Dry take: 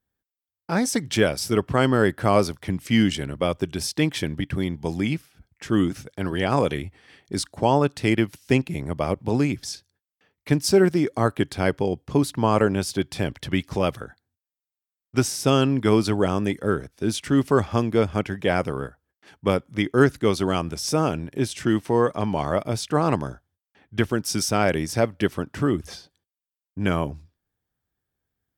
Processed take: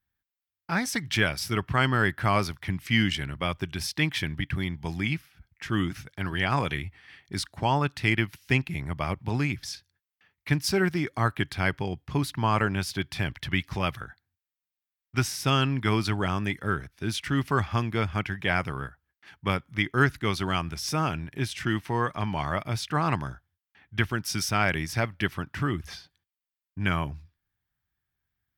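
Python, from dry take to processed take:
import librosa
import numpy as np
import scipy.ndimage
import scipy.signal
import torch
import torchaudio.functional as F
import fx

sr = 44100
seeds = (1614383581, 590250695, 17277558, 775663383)

y = fx.graphic_eq(x, sr, hz=(250, 500, 2000, 8000), db=(-6, -12, 4, -8))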